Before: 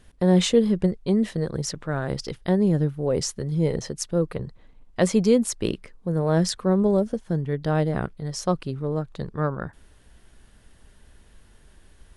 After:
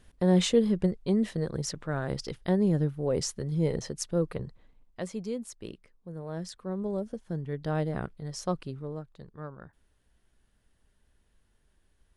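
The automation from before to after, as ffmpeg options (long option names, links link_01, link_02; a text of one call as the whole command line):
ffmpeg -i in.wav -af "volume=4.5dB,afade=type=out:start_time=4.4:duration=0.65:silence=0.266073,afade=type=in:start_time=6.51:duration=1.18:silence=0.354813,afade=type=out:start_time=8.62:duration=0.53:silence=0.354813" out.wav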